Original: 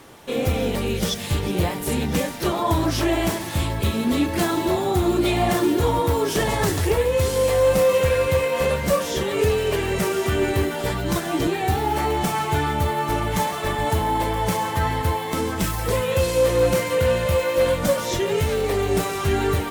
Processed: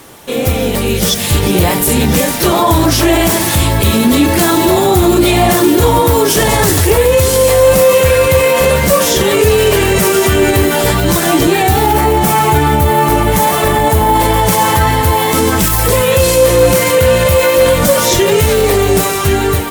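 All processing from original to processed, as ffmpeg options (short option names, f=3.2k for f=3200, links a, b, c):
-filter_complex "[0:a]asettb=1/sr,asplit=3[a][b][c];[a]atrim=end=11.934[d];[b]atrim=start=11.93:end=14.14,asetpts=PTS-STARTPTS,afade=t=in:d=0.004:c=qsin,afade=t=out:st=2.206:d=0.004:c=qsin,equalizer=f=5k:t=o:w=2.5:g=-4.5,asplit=2[e][f];[f]adelay=14,volume=-13.5dB[g];[e][g]amix=inputs=2:normalize=0,atrim=end_sample=97461[h];[c]atrim=start=14.136[i];[d][h]acrossfade=d=0.004:c1=hsin:c2=qsin[j];[j][i]acrossfade=d=0.004:c1=qsin:c2=hsin,highshelf=f=7.1k:g=9.5,dynaudnorm=f=340:g=7:m=11.5dB,alimiter=level_in=8.5dB:limit=-1dB:release=50:level=0:latency=1,volume=-1dB"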